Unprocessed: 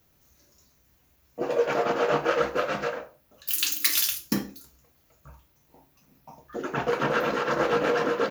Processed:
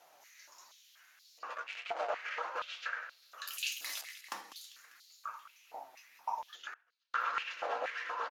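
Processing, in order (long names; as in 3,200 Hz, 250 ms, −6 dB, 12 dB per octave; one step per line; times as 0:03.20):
0:04.01–0:04.44: gap after every zero crossing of 0.12 ms
brickwall limiter −16 dBFS, peak gain reduction 11 dB
0:01.54–0:02.10: power curve on the samples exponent 2
downward compressor 5 to 1, threshold −43 dBFS, peak gain reduction 19 dB
Bessel low-pass filter 9,700 Hz, order 2
repeating echo 198 ms, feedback 57%, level −13.5 dB
flanger 1.6 Hz, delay 5.4 ms, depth 2.7 ms, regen +63%
0:06.70–0:07.14: gate with flip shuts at −47 dBFS, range −34 dB
high-pass on a step sequencer 4.2 Hz 730–4,200 Hz
level +9 dB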